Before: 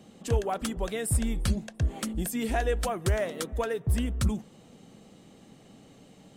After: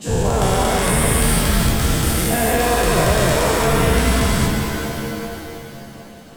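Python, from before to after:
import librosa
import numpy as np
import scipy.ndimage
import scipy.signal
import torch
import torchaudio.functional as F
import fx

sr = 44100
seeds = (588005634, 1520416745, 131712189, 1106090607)

y = fx.spec_dilate(x, sr, span_ms=480)
y = fx.rev_shimmer(y, sr, seeds[0], rt60_s=2.7, semitones=7, shimmer_db=-2, drr_db=4.0)
y = F.gain(torch.from_numpy(y), 1.5).numpy()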